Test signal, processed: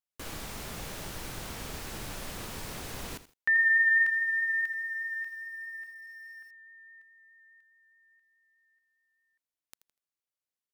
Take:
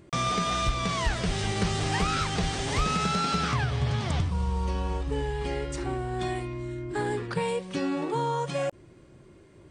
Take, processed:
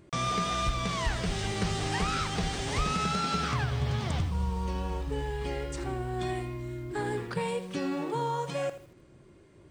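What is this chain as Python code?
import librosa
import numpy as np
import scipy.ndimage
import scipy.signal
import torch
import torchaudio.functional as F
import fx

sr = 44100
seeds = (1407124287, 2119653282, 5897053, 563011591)

y = fx.vibrato(x, sr, rate_hz=4.8, depth_cents=13.0)
y = fx.echo_crushed(y, sr, ms=81, feedback_pct=35, bits=8, wet_db=-13)
y = F.gain(torch.from_numpy(y), -3.0).numpy()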